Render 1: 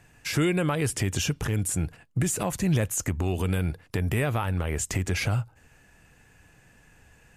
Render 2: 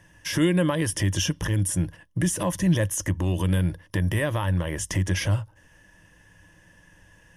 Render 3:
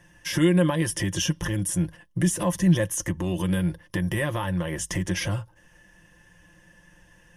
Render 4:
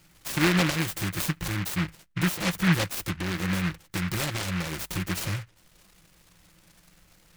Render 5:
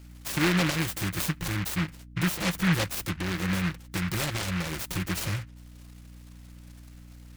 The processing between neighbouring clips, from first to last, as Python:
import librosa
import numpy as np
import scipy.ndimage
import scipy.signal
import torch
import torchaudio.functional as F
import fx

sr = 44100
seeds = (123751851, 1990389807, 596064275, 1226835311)

y1 = fx.ripple_eq(x, sr, per_octave=1.2, db=11)
y2 = y1 + 0.55 * np.pad(y1, (int(5.7 * sr / 1000.0), 0))[:len(y1)]
y2 = F.gain(torch.from_numpy(y2), -1.5).numpy()
y3 = fx.noise_mod_delay(y2, sr, seeds[0], noise_hz=1700.0, depth_ms=0.35)
y3 = F.gain(torch.from_numpy(y3), -3.0).numpy()
y4 = 10.0 ** (-16.0 / 20.0) * np.tanh(y3 / 10.0 ** (-16.0 / 20.0))
y4 = fx.add_hum(y4, sr, base_hz=60, snr_db=17)